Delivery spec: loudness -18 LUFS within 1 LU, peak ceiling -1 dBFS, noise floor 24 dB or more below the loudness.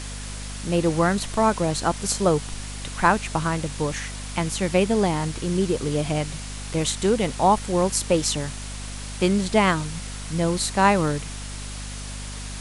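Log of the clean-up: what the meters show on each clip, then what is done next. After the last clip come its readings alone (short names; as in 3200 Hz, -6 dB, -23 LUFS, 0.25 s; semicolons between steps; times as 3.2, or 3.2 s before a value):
hum 50 Hz; harmonics up to 250 Hz; hum level -33 dBFS; noise floor -34 dBFS; noise floor target -48 dBFS; loudness -23.5 LUFS; peak -4.0 dBFS; loudness target -18.0 LUFS
-> notches 50/100/150/200/250 Hz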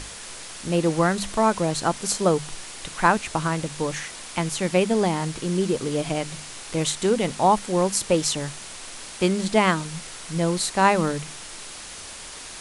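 hum none; noise floor -39 dBFS; noise floor target -48 dBFS
-> noise print and reduce 9 dB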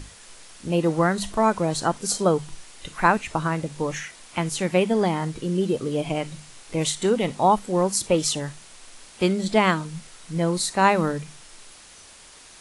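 noise floor -48 dBFS; loudness -23.5 LUFS; peak -4.0 dBFS; loudness target -18.0 LUFS
-> gain +5.5 dB; limiter -1 dBFS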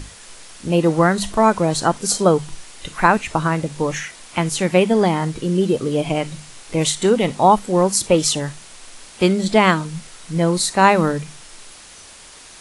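loudness -18.0 LUFS; peak -1.0 dBFS; noise floor -42 dBFS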